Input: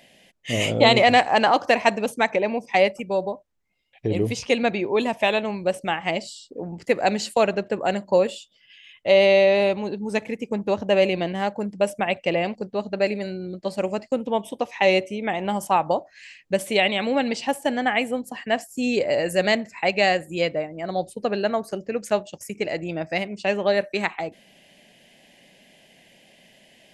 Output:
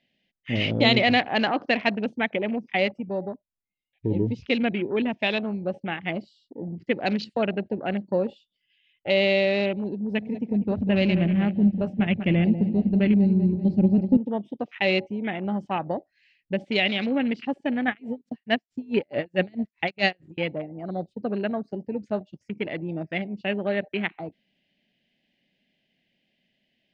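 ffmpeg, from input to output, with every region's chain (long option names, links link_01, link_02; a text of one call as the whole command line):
ffmpeg -i in.wav -filter_complex "[0:a]asettb=1/sr,asplit=3[link_01][link_02][link_03];[link_01]atrim=end=9.994[link_04];[link_02]atrim=start=9.99:end=14.17,asetpts=PTS-STARTPTS,afade=type=in:duration=0.004:curve=qsin,afade=type=out:start_time=4.176:duration=0.004:curve=qsin,asubboost=boost=10:cutoff=210,aecho=1:1:194|388|582|776|970:0.355|0.17|0.0817|0.0392|0.0188,atrim=end_sample=184338[link_05];[link_03]atrim=start=14.166[link_06];[link_04][link_05]acrossfade=duration=0.004:curve1=hsin:curve2=qsin[link_07];[link_07][link_06]acrossfade=duration=0.004:curve1=qsin:curve2=hsin,asettb=1/sr,asplit=3[link_08][link_09][link_10];[link_08]atrim=end=17.884[link_11];[link_09]atrim=start=17.88:end=20.38,asetpts=PTS-STARTPTS,afade=type=in:duration=0.004:curve=qsin,afade=type=out:start_time=2.496:duration=0.004:curve=qsin,acontrast=28,aeval=exprs='sgn(val(0))*max(abs(val(0))-0.00501,0)':channel_layout=same,aeval=exprs='val(0)*pow(10,-30*(0.5-0.5*cos(2*PI*4.6*n/s))/20)':channel_layout=same[link_12];[link_10]atrim=start=20.376[link_13];[link_11][link_12]acrossfade=duration=0.004:curve1=hsin:curve2=qsin[link_14];[link_14][link_13]acrossfade=duration=0.004:curve1=qsin:curve2=hsin,equalizer=frequency=250:width_type=o:width=1:gain=3,equalizer=frequency=500:width_type=o:width=1:gain=-5,equalizer=frequency=1000:width_type=o:width=1:gain=-10,afwtdn=0.02,lowpass=frequency=4500:width=0.5412,lowpass=frequency=4500:width=1.3066" out.wav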